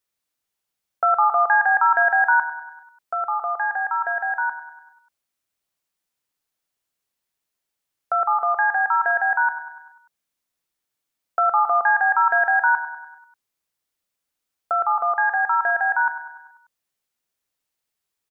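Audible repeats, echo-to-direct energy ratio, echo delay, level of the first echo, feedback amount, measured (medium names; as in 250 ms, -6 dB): 5, -10.5 dB, 98 ms, -12.0 dB, 55%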